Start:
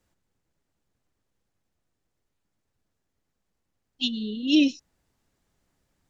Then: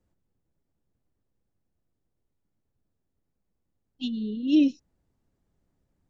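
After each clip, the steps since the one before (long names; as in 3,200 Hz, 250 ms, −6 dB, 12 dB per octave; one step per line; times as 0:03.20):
tilt shelving filter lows +7 dB, about 850 Hz
level −5.5 dB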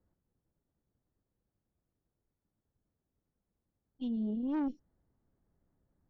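Savitzky-Golay smoothing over 41 samples
tube saturation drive 23 dB, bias 0.5
brickwall limiter −29 dBFS, peak gain reduction 7.5 dB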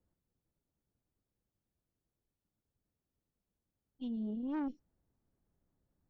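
dynamic equaliser 1,600 Hz, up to +4 dB, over −52 dBFS, Q 0.78
level −4 dB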